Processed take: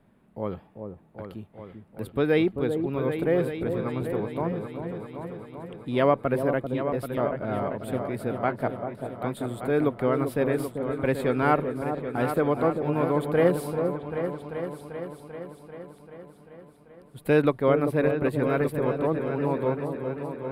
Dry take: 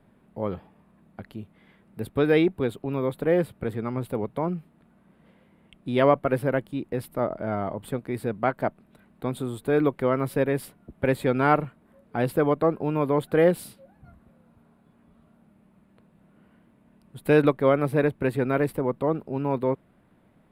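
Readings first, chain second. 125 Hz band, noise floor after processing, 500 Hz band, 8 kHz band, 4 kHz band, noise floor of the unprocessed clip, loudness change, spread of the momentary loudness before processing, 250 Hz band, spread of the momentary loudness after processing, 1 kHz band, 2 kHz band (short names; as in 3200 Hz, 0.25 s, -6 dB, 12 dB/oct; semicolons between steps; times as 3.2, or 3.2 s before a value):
-0.5 dB, -55 dBFS, -0.5 dB, -1.5 dB, -1.5 dB, -61 dBFS, -1.5 dB, 13 LU, -0.5 dB, 18 LU, -1.0 dB, -1.0 dB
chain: repeats that get brighter 0.391 s, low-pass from 750 Hz, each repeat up 2 oct, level -6 dB; gain -2 dB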